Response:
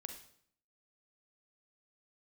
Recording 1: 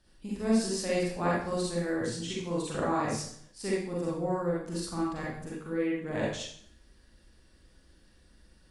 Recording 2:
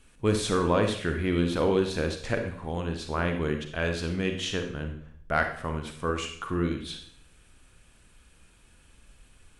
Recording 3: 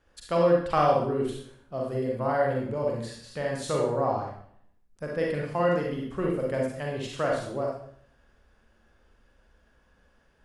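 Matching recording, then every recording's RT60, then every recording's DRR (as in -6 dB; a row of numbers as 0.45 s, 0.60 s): 2; 0.60 s, 0.60 s, 0.60 s; -6.5 dB, 5.0 dB, -2.0 dB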